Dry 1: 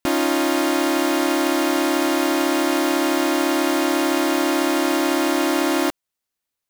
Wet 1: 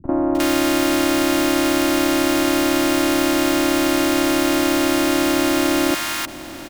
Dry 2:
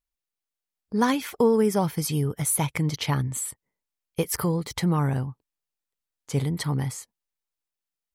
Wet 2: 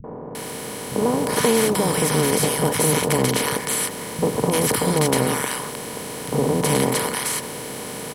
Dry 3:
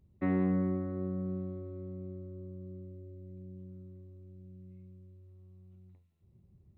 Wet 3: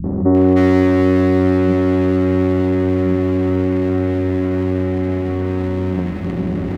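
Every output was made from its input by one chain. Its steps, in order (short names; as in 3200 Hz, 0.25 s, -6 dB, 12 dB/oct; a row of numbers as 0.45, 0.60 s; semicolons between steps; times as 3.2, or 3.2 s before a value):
per-bin compression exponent 0.2; backlash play -38 dBFS; three bands offset in time lows, mids, highs 40/350 ms, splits 170/1000 Hz; normalise peaks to -3 dBFS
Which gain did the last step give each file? +1.5, -1.5, +19.5 dB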